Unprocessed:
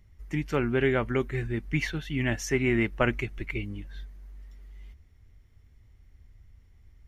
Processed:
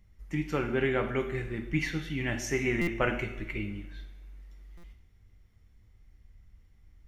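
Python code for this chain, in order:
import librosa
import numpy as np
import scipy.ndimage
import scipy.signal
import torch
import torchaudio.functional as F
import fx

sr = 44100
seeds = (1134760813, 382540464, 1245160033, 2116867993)

y = fx.rev_double_slope(x, sr, seeds[0], early_s=0.7, late_s=2.2, knee_db=-18, drr_db=4.0)
y = fx.buffer_glitch(y, sr, at_s=(2.81, 4.77), block=256, repeats=10)
y = F.gain(torch.from_numpy(y), -3.5).numpy()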